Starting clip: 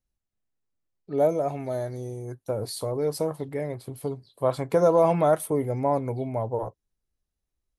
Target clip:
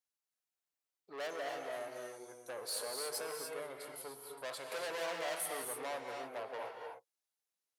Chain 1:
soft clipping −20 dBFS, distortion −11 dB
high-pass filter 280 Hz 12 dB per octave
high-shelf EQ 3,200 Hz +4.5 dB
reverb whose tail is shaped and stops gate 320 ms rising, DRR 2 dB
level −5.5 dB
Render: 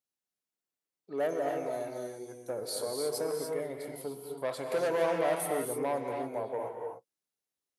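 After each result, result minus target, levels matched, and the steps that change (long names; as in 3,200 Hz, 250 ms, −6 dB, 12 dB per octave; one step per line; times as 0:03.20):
250 Hz band +7.0 dB; soft clipping: distortion −7 dB
change: high-pass filter 600 Hz 12 dB per octave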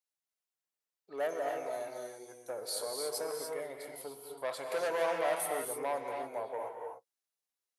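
soft clipping: distortion −7 dB
change: soft clipping −30.5 dBFS, distortion −4 dB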